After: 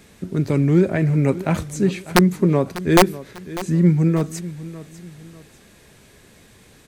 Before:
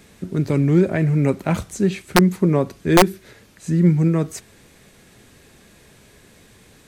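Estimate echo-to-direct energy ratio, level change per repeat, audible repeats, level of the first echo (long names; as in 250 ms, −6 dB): −15.5 dB, −8.5 dB, 2, −16.0 dB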